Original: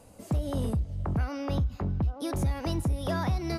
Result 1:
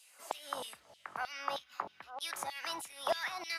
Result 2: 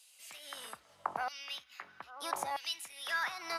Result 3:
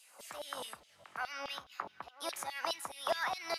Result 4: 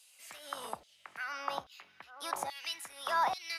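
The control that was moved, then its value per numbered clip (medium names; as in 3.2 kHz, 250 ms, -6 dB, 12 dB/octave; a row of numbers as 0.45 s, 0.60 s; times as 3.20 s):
LFO high-pass, rate: 3.2 Hz, 0.78 Hz, 4.8 Hz, 1.2 Hz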